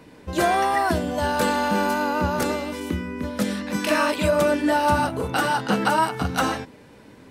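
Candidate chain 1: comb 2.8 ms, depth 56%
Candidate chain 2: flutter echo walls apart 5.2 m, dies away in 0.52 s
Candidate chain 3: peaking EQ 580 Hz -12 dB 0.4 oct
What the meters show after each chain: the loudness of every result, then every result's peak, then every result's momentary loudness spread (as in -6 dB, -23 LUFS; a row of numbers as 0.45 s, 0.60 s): -22.5 LUFS, -19.5 LUFS, -24.5 LUFS; -6.0 dBFS, -4.5 dBFS, -9.0 dBFS; 9 LU, 10 LU, 7 LU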